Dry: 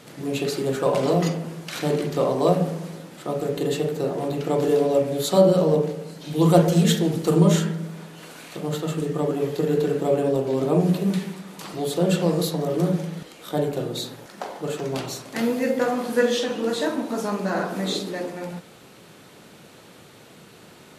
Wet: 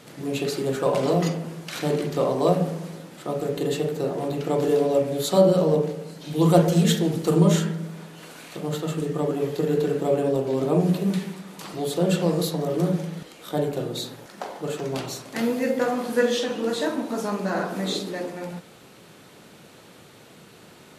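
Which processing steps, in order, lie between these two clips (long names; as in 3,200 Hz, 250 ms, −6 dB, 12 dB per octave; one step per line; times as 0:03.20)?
level −1 dB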